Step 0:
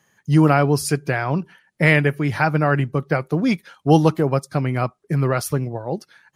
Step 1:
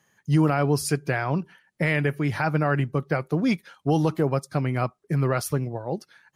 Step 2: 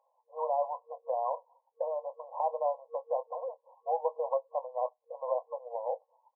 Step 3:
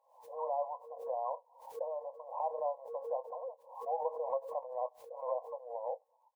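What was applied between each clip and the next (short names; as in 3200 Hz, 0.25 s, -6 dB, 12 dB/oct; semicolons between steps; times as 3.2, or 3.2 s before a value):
limiter -7.5 dBFS, peak gain reduction 6 dB; gain -3.5 dB
FFT band-pass 470–1100 Hz; in parallel at 0 dB: compressor, threshold -36 dBFS, peak gain reduction 13 dB; on the sum: doubler 24 ms -13 dB; gain -4.5 dB
backwards sustainer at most 100 dB/s; gain -5 dB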